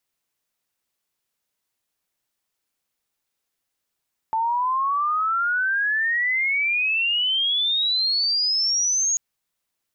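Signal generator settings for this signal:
glide logarithmic 880 Hz → 6,700 Hz −19.5 dBFS → −18.5 dBFS 4.84 s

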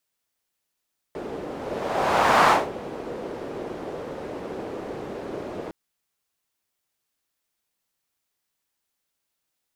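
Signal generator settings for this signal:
pass-by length 4.56 s, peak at 0:01.34, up 1.07 s, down 0.23 s, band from 440 Hz, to 1,000 Hz, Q 1.7, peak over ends 17 dB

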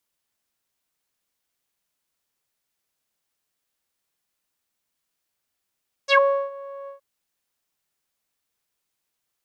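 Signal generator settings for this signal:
subtractive voice saw C#5 12 dB per octave, low-pass 860 Hz, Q 6.4, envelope 3 octaves, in 0.11 s, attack 50 ms, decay 0.37 s, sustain −21 dB, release 0.12 s, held 0.80 s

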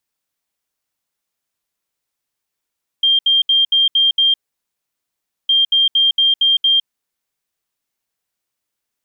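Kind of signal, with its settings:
beeps in groups sine 3,190 Hz, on 0.16 s, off 0.07 s, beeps 6, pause 1.15 s, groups 2, −10 dBFS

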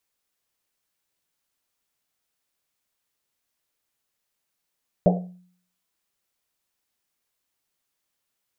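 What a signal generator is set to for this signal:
drum after Risset, pitch 180 Hz, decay 0.58 s, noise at 590 Hz, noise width 300 Hz, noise 40%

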